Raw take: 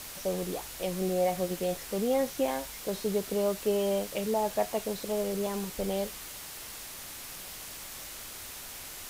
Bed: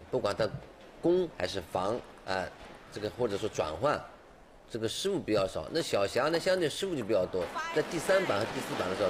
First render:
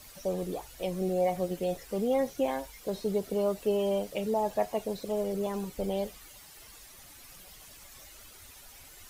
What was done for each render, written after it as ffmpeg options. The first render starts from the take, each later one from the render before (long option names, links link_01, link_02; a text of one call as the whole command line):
ffmpeg -i in.wav -af "afftdn=noise_reduction=12:noise_floor=-43" out.wav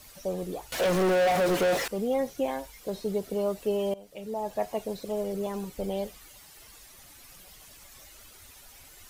ffmpeg -i in.wav -filter_complex "[0:a]asettb=1/sr,asplit=3[link_01][link_02][link_03];[link_01]atrim=end=0.724[link_04];[link_02]atrim=start=0.72:end=1.88,asetpts=PTS-STARTPTS,afade=type=in:duration=0.004:curve=qsin,afade=type=out:start_time=1.156:duration=0.004:curve=qsin,asplit=2[link_05][link_06];[link_06]highpass=frequency=720:poles=1,volume=37dB,asoftclip=type=tanh:threshold=-17dB[link_07];[link_05][link_07]amix=inputs=2:normalize=0,lowpass=frequency=2400:poles=1,volume=-6dB[link_08];[link_03]atrim=start=1.876[link_09];[link_04][link_08]acrossfade=duration=0.004:curve1=hsin:curve2=qsin[link_10];[link_10][link_09]acrossfade=duration=0.004:curve1=qsin:curve2=hsin,asplit=2[link_11][link_12];[link_11]atrim=end=3.94,asetpts=PTS-STARTPTS,afade=type=out:start_time=3.936:duration=0.004:curve=hsin:silence=0.0944061[link_13];[link_12]atrim=start=3.94,asetpts=PTS-STARTPTS,afade=type=in:duration=0.76:silence=0.0944061[link_14];[link_13][link_14]concat=n=2:v=0:a=1" out.wav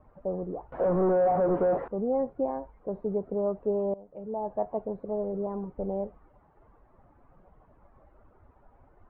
ffmpeg -i in.wav -af "lowpass=frequency=1100:width=0.5412,lowpass=frequency=1100:width=1.3066" out.wav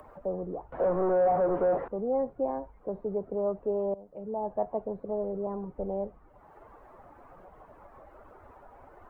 ffmpeg -i in.wav -filter_complex "[0:a]acrossover=split=110|340[link_01][link_02][link_03];[link_02]alimiter=level_in=11.5dB:limit=-24dB:level=0:latency=1,volume=-11.5dB[link_04];[link_03]acompressor=mode=upward:threshold=-42dB:ratio=2.5[link_05];[link_01][link_04][link_05]amix=inputs=3:normalize=0" out.wav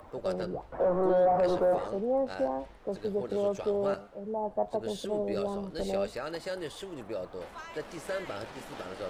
ffmpeg -i in.wav -i bed.wav -filter_complex "[1:a]volume=-8.5dB[link_01];[0:a][link_01]amix=inputs=2:normalize=0" out.wav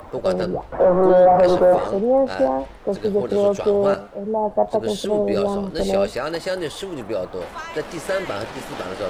ffmpeg -i in.wav -af "volume=11.5dB" out.wav